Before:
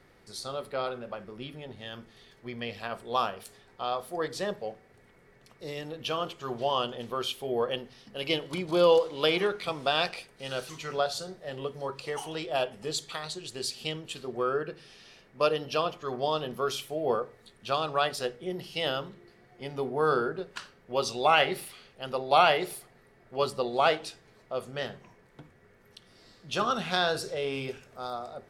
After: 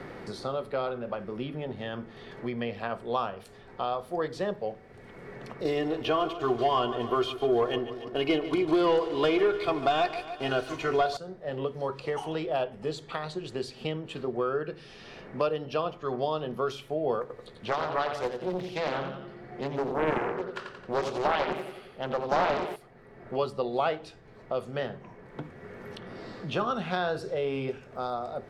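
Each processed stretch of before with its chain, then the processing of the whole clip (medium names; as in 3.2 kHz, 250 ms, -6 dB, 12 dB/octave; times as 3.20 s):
5.65–11.17 s: comb 2.8 ms, depth 76% + waveshaping leveller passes 2 + feedback delay 144 ms, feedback 52%, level -15 dB
17.21–22.76 s: block-companded coder 7-bit + feedback delay 88 ms, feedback 42%, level -7.5 dB + loudspeaker Doppler distortion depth 0.88 ms
whole clip: low-pass 1.3 kHz 6 dB/octave; three bands compressed up and down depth 70%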